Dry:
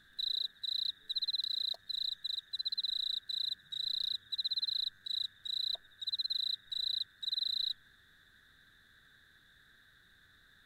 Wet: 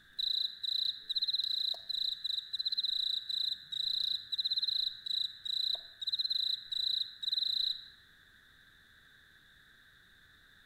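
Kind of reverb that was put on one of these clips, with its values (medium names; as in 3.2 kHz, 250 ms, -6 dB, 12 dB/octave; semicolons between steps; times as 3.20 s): Schroeder reverb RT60 0.72 s, DRR 12.5 dB; trim +2 dB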